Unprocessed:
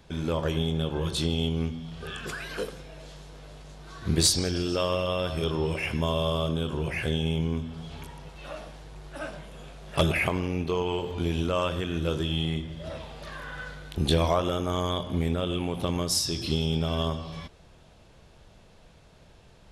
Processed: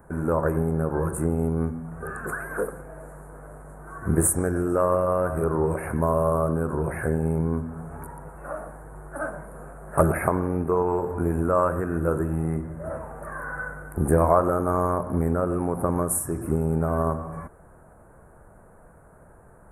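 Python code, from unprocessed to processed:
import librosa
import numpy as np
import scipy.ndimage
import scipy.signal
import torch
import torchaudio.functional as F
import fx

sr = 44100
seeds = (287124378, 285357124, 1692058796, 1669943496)

y = scipy.signal.sosfilt(scipy.signal.ellip(3, 1.0, 60, [1500.0, 9300.0], 'bandstop', fs=sr, output='sos'), x)
y = fx.low_shelf(y, sr, hz=350.0, db=-7.0)
y = y * librosa.db_to_amplitude(8.5)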